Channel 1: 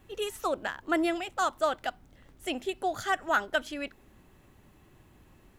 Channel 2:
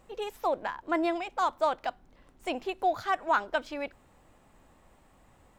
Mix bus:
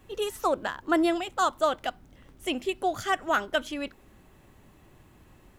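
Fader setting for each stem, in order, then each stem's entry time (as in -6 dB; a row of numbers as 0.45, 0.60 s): +2.0, -5.5 dB; 0.00, 0.00 s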